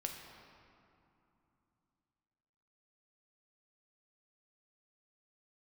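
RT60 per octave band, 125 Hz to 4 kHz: 3.8 s, 3.8 s, 2.7 s, 3.0 s, 2.2 s, 1.5 s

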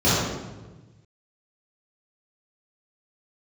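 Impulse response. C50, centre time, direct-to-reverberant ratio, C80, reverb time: -3.0 dB, 102 ms, -13.0 dB, 0.0 dB, 1.2 s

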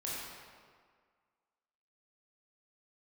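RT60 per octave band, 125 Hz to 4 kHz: 1.5 s, 1.7 s, 1.8 s, 1.8 s, 1.6 s, 1.2 s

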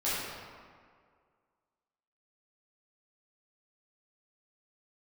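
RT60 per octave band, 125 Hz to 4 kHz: 1.8 s, 1.9 s, 2.0 s, 2.0 s, 1.6 s, 1.1 s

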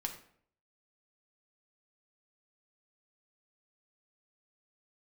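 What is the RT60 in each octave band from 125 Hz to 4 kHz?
0.65 s, 0.65 s, 0.65 s, 0.55 s, 0.50 s, 0.40 s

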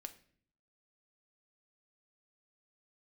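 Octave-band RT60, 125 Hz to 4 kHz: 0.80 s, 0.80 s, 0.60 s, 0.45 s, 0.55 s, 0.45 s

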